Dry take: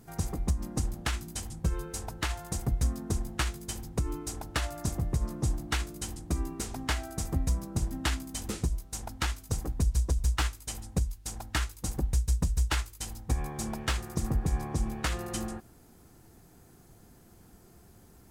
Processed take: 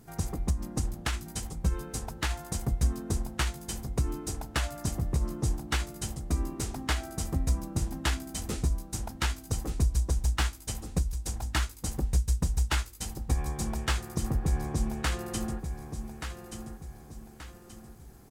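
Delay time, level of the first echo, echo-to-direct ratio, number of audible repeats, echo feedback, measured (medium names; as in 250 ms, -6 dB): 1179 ms, -8.5 dB, -7.5 dB, 4, 40%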